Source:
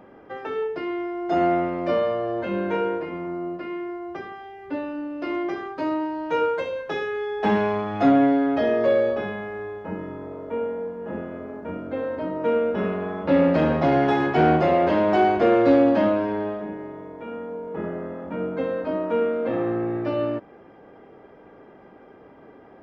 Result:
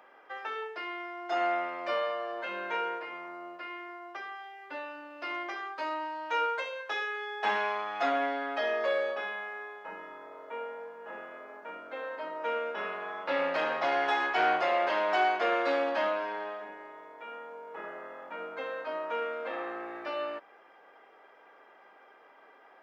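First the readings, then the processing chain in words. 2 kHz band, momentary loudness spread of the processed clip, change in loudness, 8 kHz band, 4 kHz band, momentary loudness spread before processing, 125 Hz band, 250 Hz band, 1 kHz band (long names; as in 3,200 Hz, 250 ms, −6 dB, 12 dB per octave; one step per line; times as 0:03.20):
−0.5 dB, 16 LU, −9.0 dB, can't be measured, 0.0 dB, 15 LU, below −30 dB, −21.0 dB, −5.0 dB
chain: high-pass filter 990 Hz 12 dB per octave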